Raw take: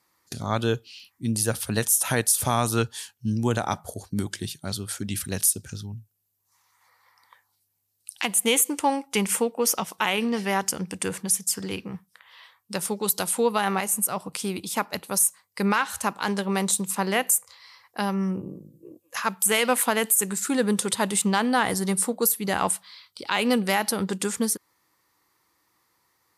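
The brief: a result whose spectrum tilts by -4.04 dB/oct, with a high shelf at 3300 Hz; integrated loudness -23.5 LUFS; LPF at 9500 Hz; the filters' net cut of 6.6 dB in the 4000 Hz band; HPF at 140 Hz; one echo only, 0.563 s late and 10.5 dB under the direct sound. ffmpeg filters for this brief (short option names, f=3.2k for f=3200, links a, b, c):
-af "highpass=140,lowpass=9.5k,highshelf=f=3.3k:g=-4.5,equalizer=f=4k:t=o:g=-6,aecho=1:1:563:0.299,volume=4dB"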